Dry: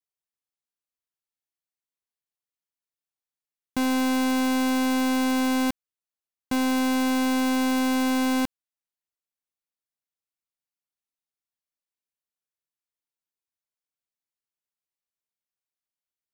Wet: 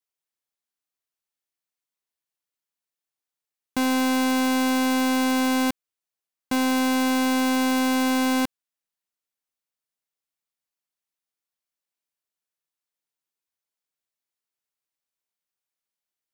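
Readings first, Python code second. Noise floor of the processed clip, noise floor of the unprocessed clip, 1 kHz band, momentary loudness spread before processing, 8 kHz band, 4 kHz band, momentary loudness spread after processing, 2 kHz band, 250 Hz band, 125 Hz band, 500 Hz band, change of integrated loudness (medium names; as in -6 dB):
under -85 dBFS, under -85 dBFS, +2.5 dB, 5 LU, +3.0 dB, +3.0 dB, 5 LU, +3.0 dB, +1.0 dB, no reading, +2.5 dB, +1.5 dB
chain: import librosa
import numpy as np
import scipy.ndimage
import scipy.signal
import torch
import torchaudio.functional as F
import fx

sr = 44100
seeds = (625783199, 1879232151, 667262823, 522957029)

y = fx.low_shelf(x, sr, hz=160.0, db=-7.5)
y = y * 10.0 ** (3.0 / 20.0)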